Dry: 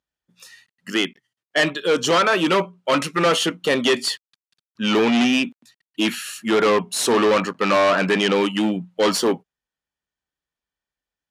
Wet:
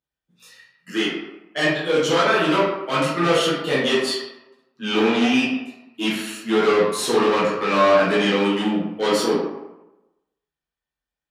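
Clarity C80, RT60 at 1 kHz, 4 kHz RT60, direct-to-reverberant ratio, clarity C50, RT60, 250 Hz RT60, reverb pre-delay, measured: 4.5 dB, 1.0 s, 0.55 s, −9.0 dB, 1.0 dB, 1.0 s, 0.90 s, 6 ms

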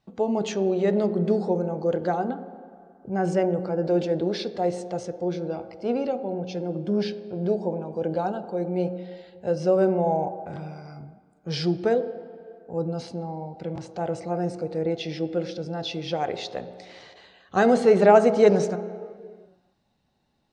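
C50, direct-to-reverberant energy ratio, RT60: 13.0 dB, 10.5 dB, non-exponential decay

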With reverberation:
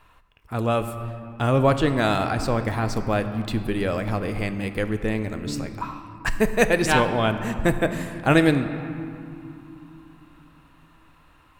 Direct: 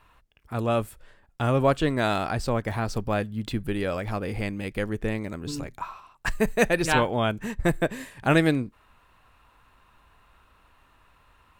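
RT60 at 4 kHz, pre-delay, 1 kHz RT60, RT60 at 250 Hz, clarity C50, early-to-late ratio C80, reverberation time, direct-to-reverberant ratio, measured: 1.5 s, 3 ms, 3.0 s, 4.2 s, 9.5 dB, 10.5 dB, 3.0 s, 8.5 dB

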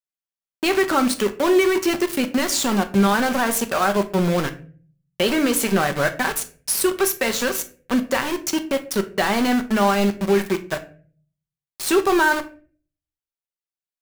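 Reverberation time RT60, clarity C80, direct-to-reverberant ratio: 0.45 s, 19.5 dB, 7.0 dB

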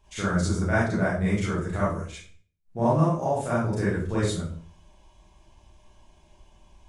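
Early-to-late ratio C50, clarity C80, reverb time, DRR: 0.5 dB, 6.5 dB, 0.50 s, −10.0 dB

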